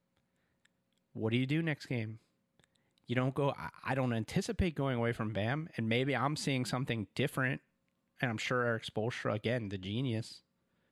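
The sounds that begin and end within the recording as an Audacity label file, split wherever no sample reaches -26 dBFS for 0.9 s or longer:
1.230000	2.010000	sound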